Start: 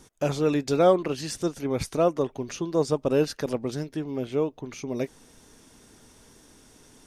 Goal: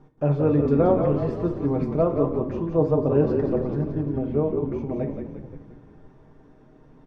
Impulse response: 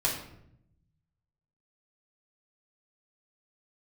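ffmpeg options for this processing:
-filter_complex "[0:a]lowpass=1100,aecho=1:1:6.6:0.4,asplit=8[link_01][link_02][link_03][link_04][link_05][link_06][link_07][link_08];[link_02]adelay=175,afreqshift=-39,volume=-6dB[link_09];[link_03]adelay=350,afreqshift=-78,volume=-10.9dB[link_10];[link_04]adelay=525,afreqshift=-117,volume=-15.8dB[link_11];[link_05]adelay=700,afreqshift=-156,volume=-20.6dB[link_12];[link_06]adelay=875,afreqshift=-195,volume=-25.5dB[link_13];[link_07]adelay=1050,afreqshift=-234,volume=-30.4dB[link_14];[link_08]adelay=1225,afreqshift=-273,volume=-35.3dB[link_15];[link_01][link_09][link_10][link_11][link_12][link_13][link_14][link_15]amix=inputs=8:normalize=0,asplit=2[link_16][link_17];[1:a]atrim=start_sample=2205,adelay=5[link_18];[link_17][link_18]afir=irnorm=-1:irlink=0,volume=-13dB[link_19];[link_16][link_19]amix=inputs=2:normalize=0"

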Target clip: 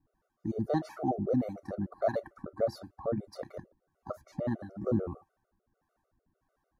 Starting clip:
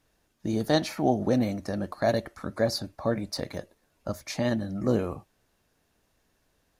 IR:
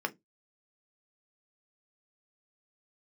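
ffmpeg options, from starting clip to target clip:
-filter_complex "[0:a]acrossover=split=470[link_01][link_02];[link_01]aeval=exprs='val(0)*(1-0.7/2+0.7/2*cos(2*PI*1.6*n/s))':channel_layout=same[link_03];[link_02]aeval=exprs='val(0)*(1-0.7/2-0.7/2*cos(2*PI*1.6*n/s))':channel_layout=same[link_04];[link_03][link_04]amix=inputs=2:normalize=0,highshelf=frequency=1800:width_type=q:width=1.5:gain=-13,afftfilt=real='re*gt(sin(2*PI*6.7*pts/sr)*(1-2*mod(floor(b*sr/1024/380),2)),0)':imag='im*gt(sin(2*PI*6.7*pts/sr)*(1-2*mod(floor(b*sr/1024/380),2)),0)':win_size=1024:overlap=0.75"

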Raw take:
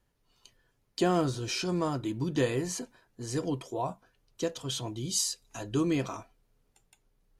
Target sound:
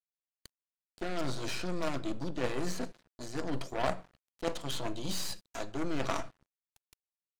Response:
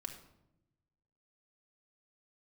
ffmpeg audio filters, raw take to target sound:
-filter_complex "[0:a]acrossover=split=2700[link_01][link_02];[link_02]acompressor=threshold=-50dB:ratio=4:attack=1:release=60[link_03];[link_01][link_03]amix=inputs=2:normalize=0,highshelf=frequency=6400:gain=7,areverse,acompressor=threshold=-38dB:ratio=5,areverse,highpass=frequency=120:width=0.5412,highpass=frequency=120:width=1.3066,equalizer=frequency=640:width_type=q:width=4:gain=8,equalizer=frequency=1400:width_type=q:width=4:gain=4,equalizer=frequency=4200:width_type=q:width=4:gain=7,lowpass=frequency=9500:width=0.5412,lowpass=frequency=9500:width=1.3066,aeval=exprs='0.0531*(cos(1*acos(clip(val(0)/0.0531,-1,1)))-cos(1*PI/2))+0.0188*(cos(2*acos(clip(val(0)/0.0531,-1,1)))-cos(2*PI/2))+0.00841*(cos(3*acos(clip(val(0)/0.0531,-1,1)))-cos(3*PI/2))+0.000531*(cos(6*acos(clip(val(0)/0.0531,-1,1)))-cos(6*PI/2))+0.00668*(cos(8*acos(clip(val(0)/0.0531,-1,1)))-cos(8*PI/2))':channel_layout=same,asplit=2[link_04][link_05];[1:a]atrim=start_sample=2205,lowshelf=frequency=100:gain=6[link_06];[link_05][link_06]afir=irnorm=-1:irlink=0,volume=-5dB[link_07];[link_04][link_07]amix=inputs=2:normalize=0,aeval=exprs='sgn(val(0))*max(abs(val(0))-0.00224,0)':channel_layout=same,volume=5dB"

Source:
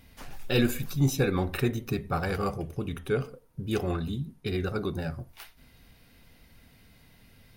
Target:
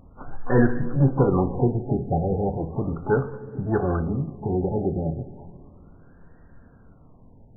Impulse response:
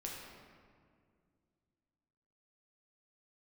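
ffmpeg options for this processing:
-filter_complex "[0:a]asplit=2[link_01][link_02];[link_02]asetrate=88200,aresample=44100,atempo=0.5,volume=-11dB[link_03];[link_01][link_03]amix=inputs=2:normalize=0,asplit=2[link_04][link_05];[1:a]atrim=start_sample=2205[link_06];[link_05][link_06]afir=irnorm=-1:irlink=0,volume=-9.5dB[link_07];[link_04][link_07]amix=inputs=2:normalize=0,afftfilt=real='re*lt(b*sr/1024,820*pow(1900/820,0.5+0.5*sin(2*PI*0.35*pts/sr)))':imag='im*lt(b*sr/1024,820*pow(1900/820,0.5+0.5*sin(2*PI*0.35*pts/sr)))':win_size=1024:overlap=0.75,volume=4.5dB"

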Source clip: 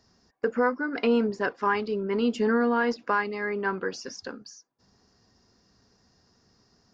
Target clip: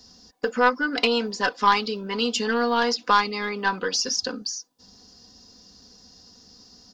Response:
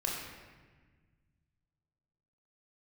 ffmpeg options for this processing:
-filter_complex "[0:a]acrossover=split=650[link_01][link_02];[link_01]acompressor=threshold=-38dB:ratio=6[link_03];[link_02]aeval=exprs='0.178*(cos(1*acos(clip(val(0)/0.178,-1,1)))-cos(1*PI/2))+0.0126*(cos(3*acos(clip(val(0)/0.178,-1,1)))-cos(3*PI/2))+0.00501*(cos(4*acos(clip(val(0)/0.178,-1,1)))-cos(4*PI/2))':channel_layout=same[link_04];[link_03][link_04]amix=inputs=2:normalize=0,highshelf=frequency=2700:width_type=q:width=1.5:gain=8.5,aecho=1:1:4:0.53,volume=7.5dB"

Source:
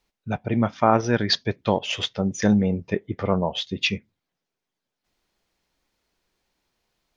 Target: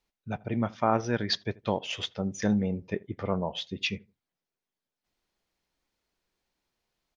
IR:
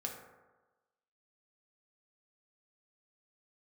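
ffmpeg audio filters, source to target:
-filter_complex "[0:a]asplit=2[link_01][link_02];[link_02]adelay=81,lowpass=frequency=1400:poles=1,volume=-23dB,asplit=2[link_03][link_04];[link_04]adelay=81,lowpass=frequency=1400:poles=1,volume=0.23[link_05];[link_01][link_03][link_05]amix=inputs=3:normalize=0,volume=-7dB"

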